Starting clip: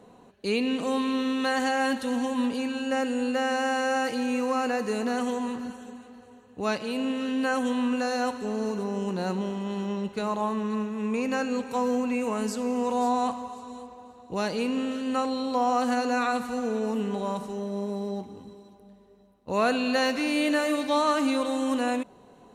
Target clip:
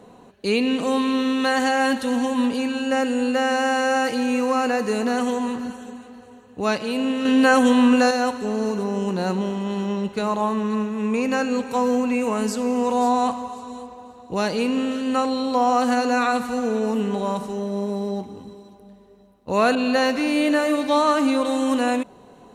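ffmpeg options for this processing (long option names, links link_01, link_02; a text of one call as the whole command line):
ffmpeg -i in.wav -filter_complex "[0:a]asettb=1/sr,asplit=3[link_01][link_02][link_03];[link_01]atrim=end=7.254[link_04];[link_02]atrim=start=7.25:end=8.11,asetpts=PTS-STARTPTS,afade=type=in:duration=0.004:curve=qsin,afade=type=out:start_time=0.856:duration=0.004:curve=qsin,acontrast=35[link_05];[link_03]atrim=start=8.106[link_06];[link_04][link_05]acrossfade=duration=0.004:curve1=hsin:curve2=qsin[link_07];[link_07][link_06]acrossfade=duration=0.004:curve1=qsin:curve2=hsin,asettb=1/sr,asplit=3[link_08][link_09][link_10];[link_08]atrim=end=19.754[link_11];[link_09]atrim=start=19.75:end=21.45,asetpts=PTS-STARTPTS,afade=type=in:duration=0.004:curve=qsin,afade=type=out:start_time=1.696:duration=0.004:curve=qsin,adynamicequalizer=threshold=0.0178:dfrequency=1700:dqfactor=0.7:tfrequency=1700:tqfactor=0.7:attack=5:release=100:ratio=0.375:range=2:mode=cutabove:tftype=highshelf[link_12];[link_10]atrim=start=21.446[link_13];[link_11][link_12]acrossfade=duration=0.004:curve1=hsin:curve2=qsin[link_14];[link_14][link_13]acrossfade=duration=0.004:curve1=qsin:curve2=hsin,volume=5.5dB" out.wav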